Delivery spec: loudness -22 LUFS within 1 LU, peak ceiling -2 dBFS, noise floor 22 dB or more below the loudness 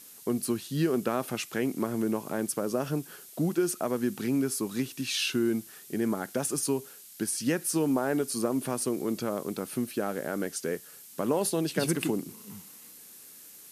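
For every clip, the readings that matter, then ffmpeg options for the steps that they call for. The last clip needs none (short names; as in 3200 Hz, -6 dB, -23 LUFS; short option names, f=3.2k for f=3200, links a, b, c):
noise floor -50 dBFS; noise floor target -52 dBFS; loudness -30.0 LUFS; peak -13.0 dBFS; loudness target -22.0 LUFS
-> -af "afftdn=nr=6:nf=-50"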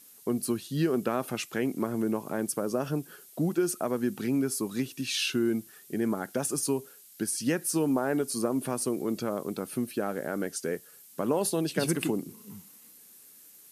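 noise floor -54 dBFS; loudness -30.0 LUFS; peak -13.0 dBFS; loudness target -22.0 LUFS
-> -af "volume=8dB"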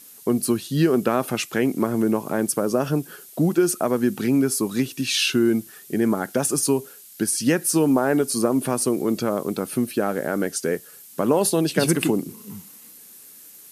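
loudness -22.0 LUFS; peak -5.0 dBFS; noise floor -46 dBFS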